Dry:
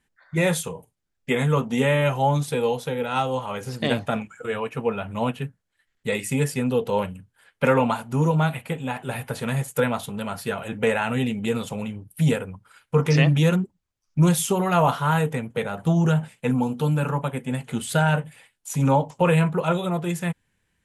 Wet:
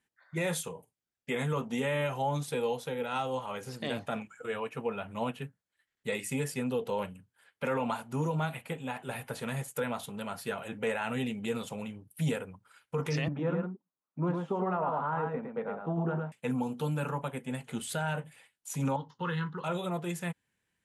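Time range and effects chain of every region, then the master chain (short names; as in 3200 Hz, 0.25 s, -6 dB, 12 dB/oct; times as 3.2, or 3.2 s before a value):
13.28–16.32 Chebyshev band-pass 210–1200 Hz + echo 0.108 s -4.5 dB
18.96–19.64 LPF 4700 Hz + tilt shelf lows -3.5 dB, about 1400 Hz + fixed phaser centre 2400 Hz, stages 6
whole clip: HPF 170 Hz 6 dB/oct; limiter -15 dBFS; gain -7 dB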